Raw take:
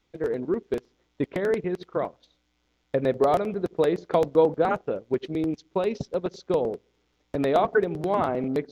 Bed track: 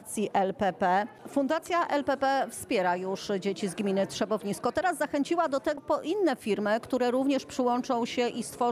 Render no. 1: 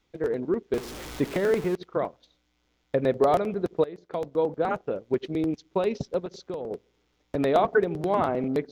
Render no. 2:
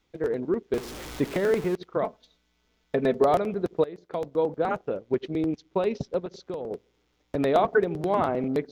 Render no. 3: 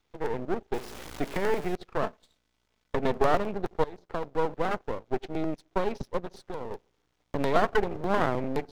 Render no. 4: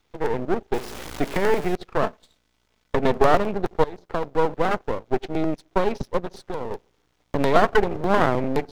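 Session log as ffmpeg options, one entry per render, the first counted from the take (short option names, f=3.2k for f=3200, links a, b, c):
-filter_complex "[0:a]asettb=1/sr,asplit=3[a][b][c];[a]atrim=end=0.744[d];[b]atrim=start=0.74:end=1.75,asetpts=PTS-STARTPTS,afade=t=in:d=0.004:c=qsin,afade=t=out:st=1.006:d=0.004:c=qsin,aeval=exprs='val(0)+0.5*0.0224*sgn(val(0))':c=same[e];[c]atrim=start=1.746[f];[d][e]acrossfade=d=0.004:c1=hsin:c2=qsin[g];[g][f]acrossfade=d=0.004:c1=qsin:c2=hsin,asettb=1/sr,asplit=3[h][i][j];[h]atrim=end=6.194[k];[i]atrim=start=6.19:end=6.71,asetpts=PTS-STARTPTS,afade=t=in:d=0.004:c=qsin,afade=t=out:st=0.516:d=0.004:c=qsin,acompressor=threshold=-31dB:ratio=4:attack=3.2:release=140:knee=1:detection=peak[l];[j]atrim=start=6.706[m];[k][l]acrossfade=d=0.004:c1=hsin:c2=qsin[n];[n][m]acrossfade=d=0.004:c1=qsin:c2=hsin,asplit=2[o][p];[o]atrim=end=3.84,asetpts=PTS-STARTPTS,afade=t=out:st=3.836:d=0.004:c=hsin:silence=0.11885[q];[p]atrim=start=3.84,asetpts=PTS-STARTPTS,afade=t=in:d=1.26:silence=0.11885[r];[q][r]concat=n=2:v=0:a=1"
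-filter_complex "[0:a]asettb=1/sr,asplit=3[a][b][c];[a]atrim=end=2.024[d];[b]atrim=start=2.02:end=3.22,asetpts=PTS-STARTPTS,afade=t=in:d=0.004:c=qsin,afade=t=out:st=1.196:d=0.004:c=qsin,aecho=1:1:4.6:0.65,atrim=end_sample=52920[e];[c]atrim=start=3.216[f];[d][e]acrossfade=d=0.004:c1=hsin:c2=qsin[g];[g][f]acrossfade=d=0.004:c1=qsin:c2=hsin,asettb=1/sr,asplit=3[h][i][j];[h]atrim=end=4.974[k];[i]atrim=start=4.97:end=6.47,asetpts=PTS-STARTPTS,afade=t=in:d=0.004:c=qsin,afade=t=out:st=1.496:d=0.004:c=qsin,highshelf=f=7.4k:g=-8[l];[j]atrim=start=6.466[m];[k][l]acrossfade=d=0.004:c1=hsin:c2=qsin[n];[n][m]acrossfade=d=0.004:c1=qsin:c2=hsin"
-filter_complex "[0:a]acrossover=split=320|1300[a][b][c];[b]crystalizer=i=8:c=0[d];[a][d][c]amix=inputs=3:normalize=0,aeval=exprs='max(val(0),0)':c=same"
-af "volume=6.5dB"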